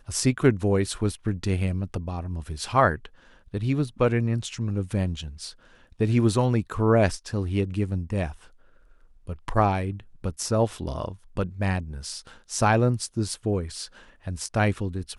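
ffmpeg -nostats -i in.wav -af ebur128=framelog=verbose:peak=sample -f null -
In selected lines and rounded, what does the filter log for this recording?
Integrated loudness:
  I:         -26.0 LUFS
  Threshold: -36.7 LUFS
Loudness range:
  LRA:         3.5 LU
  Threshold: -46.8 LUFS
  LRA low:   -28.8 LUFS
  LRA high:  -25.3 LUFS
Sample peak:
  Peak:       -5.2 dBFS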